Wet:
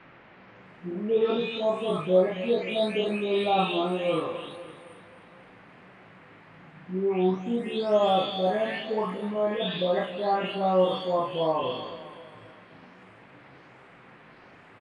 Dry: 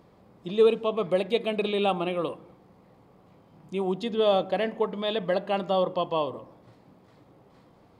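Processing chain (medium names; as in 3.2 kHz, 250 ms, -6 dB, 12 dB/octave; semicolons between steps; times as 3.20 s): delay that grows with frequency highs late, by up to 359 ms; resampled via 22.05 kHz; on a send: feedback delay 139 ms, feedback 51%, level -14 dB; on the sum: tempo 0.54×; doubling 38 ms -3 dB; band noise 200–2300 Hz -54 dBFS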